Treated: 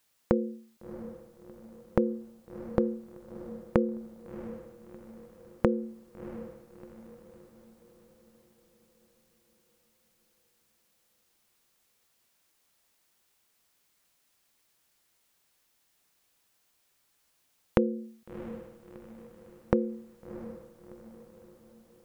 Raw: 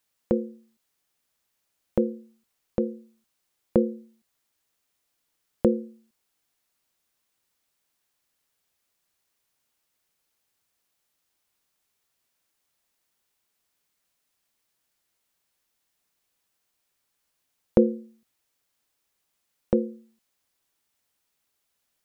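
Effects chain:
downward compressor, threshold −26 dBFS, peak gain reduction 13 dB
feedback delay with all-pass diffusion 683 ms, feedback 48%, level −13 dB
level +5 dB

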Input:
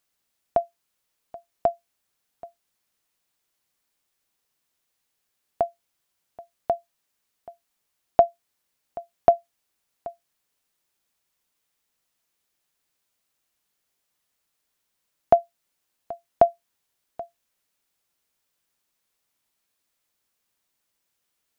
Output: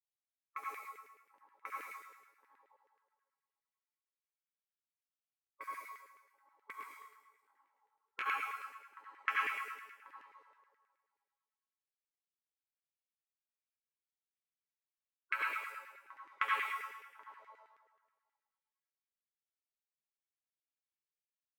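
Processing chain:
spectral magnitudes quantised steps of 15 dB
thirty-one-band graphic EQ 200 Hz −12 dB, 315 Hz −9 dB, 630 Hz +6 dB, 2,000 Hz +9 dB
echo through a band-pass that steps 245 ms, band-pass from 170 Hz, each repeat 0.7 octaves, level −10 dB
low-pass that shuts in the quiet parts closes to 330 Hz, open at −21 dBFS
gate on every frequency bin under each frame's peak −30 dB weak
resonators tuned to a chord A3 major, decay 0.32 s
convolution reverb RT60 1.3 s, pre-delay 66 ms, DRR −5.5 dB
auto-filter high-pass saw down 9.4 Hz 380–2,100 Hz
spectral tilt +4.5 dB per octave
0:06.72–0:08.26: micro pitch shift up and down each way 42 cents
level +16 dB

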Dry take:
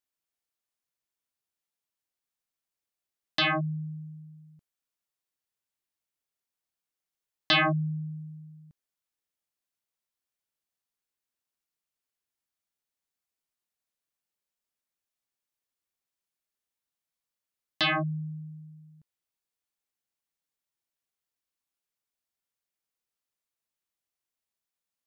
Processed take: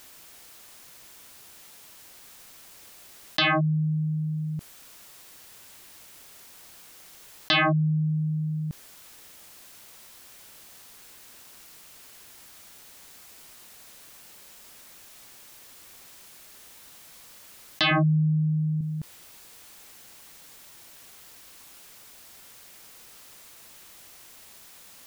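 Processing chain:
0:17.91–0:18.81: low-shelf EQ 280 Hz +12 dB
envelope flattener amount 70%

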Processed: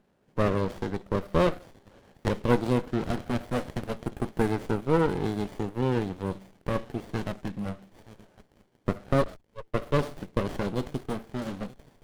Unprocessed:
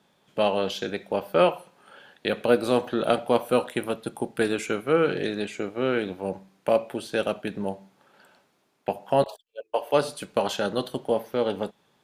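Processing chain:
auto-filter notch saw down 0.25 Hz 330–4,400 Hz
delay with a high-pass on its return 926 ms, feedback 36%, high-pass 4,400 Hz, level −5.5 dB
windowed peak hold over 33 samples

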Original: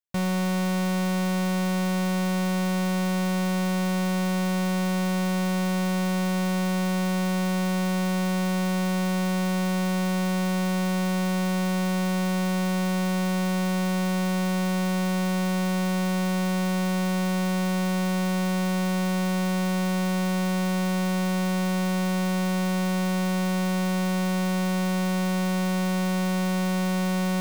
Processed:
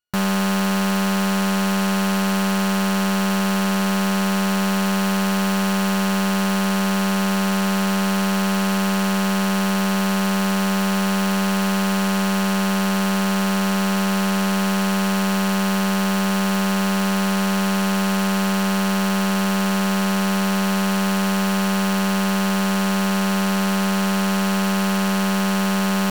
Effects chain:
samples sorted by size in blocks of 32 samples
speed change +5%
level +5 dB

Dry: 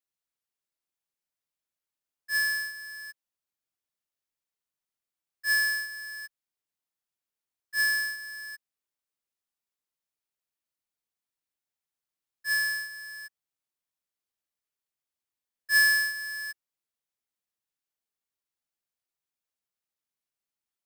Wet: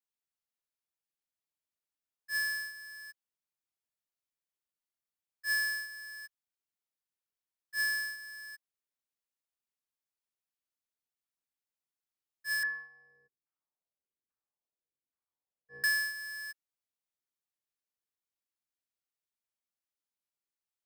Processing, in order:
0:12.63–0:15.84: auto-filter low-pass saw down 1.2 Hz 290–1,500 Hz
level −6 dB

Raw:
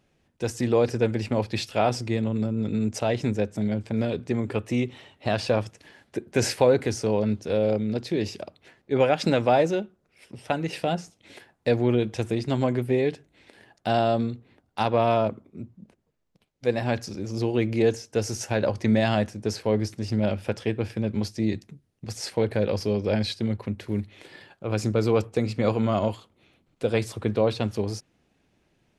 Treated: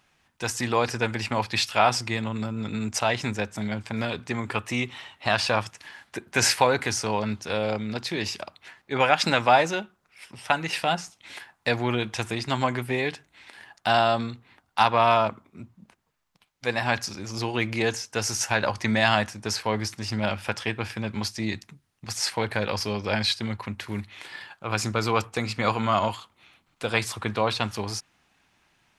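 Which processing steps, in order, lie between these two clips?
low shelf with overshoot 700 Hz −10.5 dB, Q 1.5
level +7 dB

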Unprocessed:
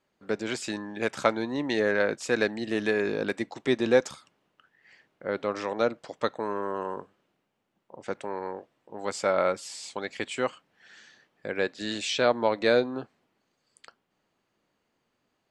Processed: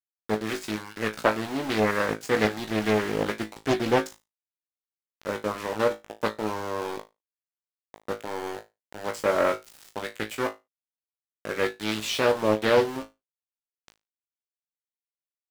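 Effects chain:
centre clipping without the shift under −32.5 dBFS
flutter between parallel walls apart 3.2 metres, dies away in 0.21 s
highs frequency-modulated by the lows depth 0.56 ms

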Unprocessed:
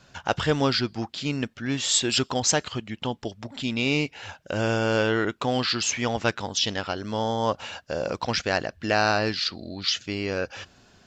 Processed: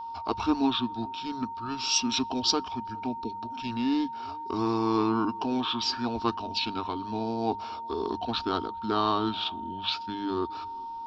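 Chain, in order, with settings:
tape delay 406 ms, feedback 48%, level −24 dB, low-pass 1,400 Hz
formants moved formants −5 semitones
phaser with its sweep stopped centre 540 Hz, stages 6
steady tone 920 Hz −35 dBFS
mains-hum notches 50/100/150/200 Hz

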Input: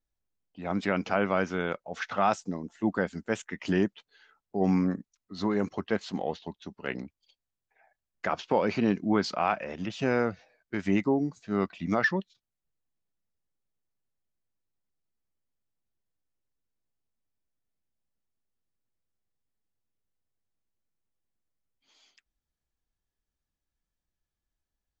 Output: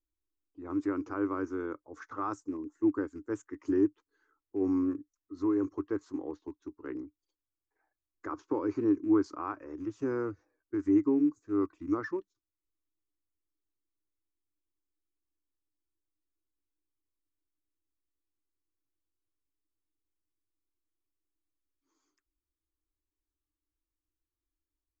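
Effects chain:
loose part that buzzes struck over −33 dBFS, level −35 dBFS
drawn EQ curve 110 Hz 0 dB, 200 Hz −22 dB, 300 Hz +12 dB, 680 Hz −17 dB, 1,100 Hz +1 dB, 3,000 Hz −25 dB, 4,300 Hz −19 dB, 6,600 Hz −6 dB, 10,000 Hz −9 dB
level −4.5 dB

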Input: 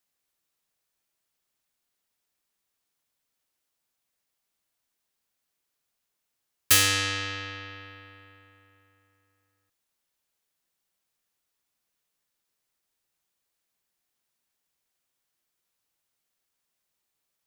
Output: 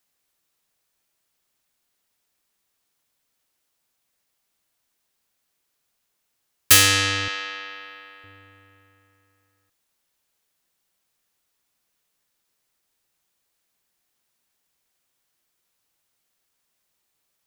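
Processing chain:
0:07.28–0:08.24: high-pass filter 530 Hz 12 dB per octave
level +6 dB

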